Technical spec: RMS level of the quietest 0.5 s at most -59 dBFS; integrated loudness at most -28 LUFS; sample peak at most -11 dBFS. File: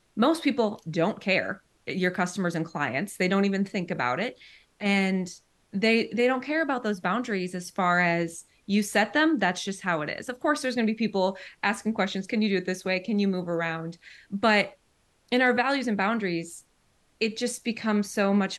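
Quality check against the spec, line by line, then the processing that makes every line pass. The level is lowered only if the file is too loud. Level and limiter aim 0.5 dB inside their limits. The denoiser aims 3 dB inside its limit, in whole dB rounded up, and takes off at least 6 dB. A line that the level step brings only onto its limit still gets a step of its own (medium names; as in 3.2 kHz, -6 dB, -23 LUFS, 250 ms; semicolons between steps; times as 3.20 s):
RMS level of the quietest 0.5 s -67 dBFS: pass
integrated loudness -26.5 LUFS: fail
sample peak -8.0 dBFS: fail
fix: trim -2 dB; peak limiter -11.5 dBFS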